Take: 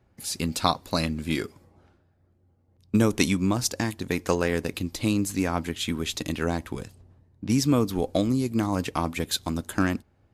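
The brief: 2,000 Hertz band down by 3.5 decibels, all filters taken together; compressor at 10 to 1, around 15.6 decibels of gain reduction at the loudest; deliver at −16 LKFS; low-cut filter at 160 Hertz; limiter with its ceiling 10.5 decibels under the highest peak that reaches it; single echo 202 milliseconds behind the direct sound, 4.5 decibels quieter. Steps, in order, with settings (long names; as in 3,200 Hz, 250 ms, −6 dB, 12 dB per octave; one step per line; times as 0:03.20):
high-pass filter 160 Hz
parametric band 2,000 Hz −4.5 dB
downward compressor 10 to 1, threshold −34 dBFS
brickwall limiter −28.5 dBFS
single-tap delay 202 ms −4.5 dB
level +24 dB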